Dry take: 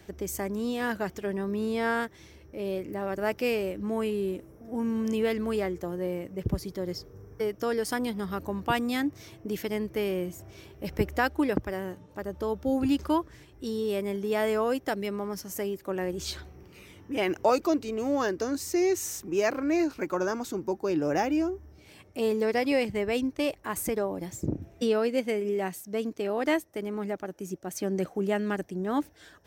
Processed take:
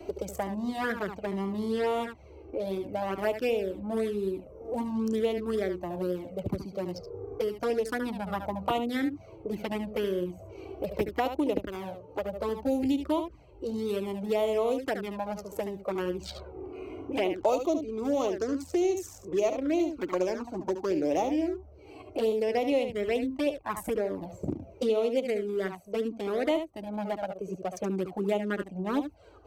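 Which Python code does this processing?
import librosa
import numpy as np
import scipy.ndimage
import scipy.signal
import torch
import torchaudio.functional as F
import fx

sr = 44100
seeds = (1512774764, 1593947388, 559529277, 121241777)

y = fx.wiener(x, sr, points=25)
y = fx.peak_eq(y, sr, hz=140.0, db=-9.0, octaves=1.7)
y = fx.room_early_taps(y, sr, ms=(11, 72), db=(-17.5, -9.0))
y = fx.env_flanger(y, sr, rest_ms=3.1, full_db=-24.5)
y = fx.peak_eq(y, sr, hz=600.0, db=3.5, octaves=0.78)
y = fx.band_squash(y, sr, depth_pct=70)
y = F.gain(torch.from_numpy(y), 2.0).numpy()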